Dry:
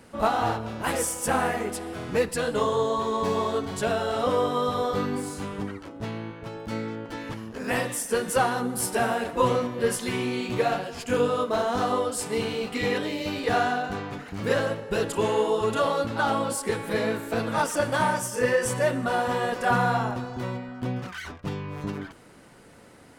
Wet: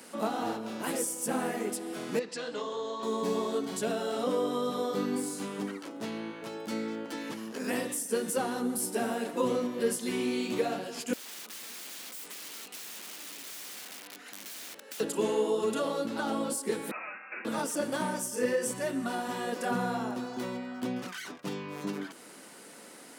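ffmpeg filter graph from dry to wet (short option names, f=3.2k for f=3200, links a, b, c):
-filter_complex "[0:a]asettb=1/sr,asplit=3[a][b][c];[a]atrim=end=2.194[d];[b]atrim=start=2.19:end=3.03,asetpts=PTS-STARTPTS,afade=t=in:d=0.004:c=qsin,afade=t=out:st=0.836:d=0.004:c=qsin,lowpass=f=6.1k:w=0.5412,lowpass=f=6.1k:w=1.3066,lowshelf=f=340:g=-10,acompressor=threshold=-34dB:ratio=1.5:attack=3.2:release=140:knee=1:detection=peak[e];[c]atrim=start=3.026[f];[d][e]acrossfade=d=0.004:c1=hsin:c2=qsin[g];[g][f]acrossfade=d=0.004:c1=qsin:c2=hsin,asettb=1/sr,asplit=3[h][i][j];[h]atrim=end=11.134[k];[i]atrim=start=11.13:end=15,asetpts=PTS-STARTPTS,afade=t=in:d=0.004:c=qsin,afade=t=out:st=3.866:d=0.004:c=qsin,highpass=240,aeval=exprs='(mod(28.2*val(0)+1,2)-1)/28.2':c=same,acrossover=split=1500|3100[l][m][n];[l]acompressor=threshold=-52dB:ratio=4[o];[m]acompressor=threshold=-50dB:ratio=4[p];[n]acompressor=threshold=-48dB:ratio=4[q];[o][p][q]amix=inputs=3:normalize=0[r];[j]atrim=start=14.996[s];[k][r]acrossfade=d=0.004:c1=hsin:c2=qsin[t];[t][s]acrossfade=d=0.004:c1=qsin:c2=hsin,asettb=1/sr,asplit=3[u][v][w];[u]atrim=end=16.914[x];[v]atrim=start=16.91:end=17.45,asetpts=PTS-STARTPTS,afade=t=in:d=0.004:c=qsin,afade=t=out:st=0.536:d=0.004:c=qsin,highpass=1.1k,lowpass=f=2.6k:t=q:w=0.5098,lowpass=f=2.6k:t=q:w=0.6013,lowpass=f=2.6k:t=q:w=0.9,lowpass=f=2.6k:t=q:w=2.563,afreqshift=-3000[y];[w]atrim=start=17.446[z];[x][y]acrossfade=d=0.004:c1=hsin:c2=qsin[aa];[aa][z]acrossfade=d=0.004:c1=qsin:c2=hsin,asettb=1/sr,asplit=3[ab][ac][ad];[ab]atrim=end=18.714[ae];[ac]atrim=start=18.71:end=19.47,asetpts=PTS-STARTPTS,afade=t=in:d=0.004:c=qsin,afade=t=out:st=0.756:d=0.004:c=qsin,equalizer=f=510:t=o:w=0.2:g=-12.5,bandreject=f=50:t=h:w=6,bandreject=f=100:t=h:w=6,bandreject=f=150:t=h:w=6,bandreject=f=200:t=h:w=6,bandreject=f=250:t=h:w=6,bandreject=f=300:t=h:w=6,bandreject=f=350:t=h:w=6,bandreject=f=400:t=h:w=6,bandreject=f=450:t=h:w=6,bandreject=f=500:t=h:w=6[af];[ad]atrim=start=19.466[ag];[ae][af]acrossfade=d=0.004:c1=hsin:c2=qsin[ah];[ah][ag]acrossfade=d=0.004:c1=qsin:c2=hsin,highpass=f=200:w=0.5412,highpass=f=200:w=1.3066,highshelf=f=3.7k:g=11.5,acrossover=split=430[ai][aj];[aj]acompressor=threshold=-44dB:ratio=2[ak];[ai][ak]amix=inputs=2:normalize=0"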